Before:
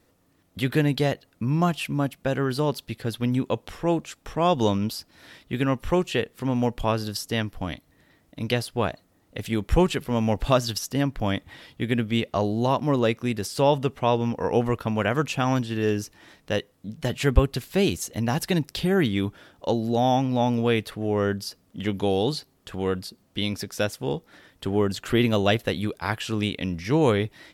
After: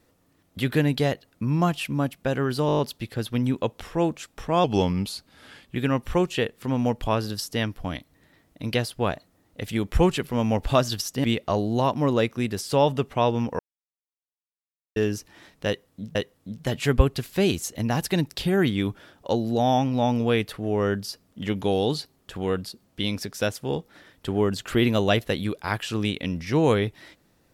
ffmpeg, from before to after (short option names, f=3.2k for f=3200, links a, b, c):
-filter_complex "[0:a]asplit=13[a][b][c][d][e][f][g][h][i][j][k][l][m];[a]atrim=end=2.692[n];[b]atrim=start=2.668:end=2.692[o];[c]atrim=start=2.668:end=2.692[p];[d]atrim=start=2.668:end=2.692[q];[e]atrim=start=2.668:end=2.692[r];[f]atrim=start=2.668:end=2.692[s];[g]atrim=start=2.668:end=4.524[t];[h]atrim=start=4.52:end=5.52,asetpts=PTS-STARTPTS,asetrate=39690,aresample=44100[u];[i]atrim=start=5.516:end=11.012[v];[j]atrim=start=12.098:end=14.45,asetpts=PTS-STARTPTS,afade=t=out:st=2.348:d=0.004:c=hsin[w];[k]atrim=start=14.45:end=15.82,asetpts=PTS-STARTPTS,volume=0[x];[l]atrim=start=15.82:end=17.012,asetpts=PTS-STARTPTS,afade=t=in:d=0.004:c=hsin[y];[m]atrim=start=16.528[z];[n][o]acrossfade=d=0.004:c1=hsin:c2=hsin[aa];[aa][p]acrossfade=d=0.004:c1=hsin:c2=hsin[ab];[ab][q]acrossfade=d=0.004:c1=hsin:c2=hsin[ac];[ac][r]acrossfade=d=0.004:c1=hsin:c2=hsin[ad];[ad][s]acrossfade=d=0.004:c1=hsin:c2=hsin[ae];[ae][t]acrossfade=d=0.004:c1=hsin:c2=hsin[af];[af][u]acrossfade=d=0.004:c1=hsin:c2=hsin[ag];[ag][v]acrossfade=d=0.004:c1=hsin:c2=hsin[ah];[w][x][y]concat=n=3:v=0:a=1[ai];[ah][ai]acrossfade=d=0.004:c1=hsin:c2=hsin[aj];[aj][z]acrossfade=d=0.004:c1=hsin:c2=hsin"